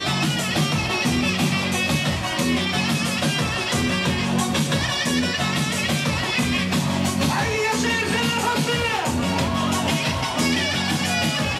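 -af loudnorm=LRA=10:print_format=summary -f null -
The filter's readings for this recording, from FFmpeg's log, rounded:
Input Integrated:    -21.2 LUFS
Input True Peak:      -9.3 dBTP
Input LRA:             0.3 LU
Input Threshold:     -31.2 LUFS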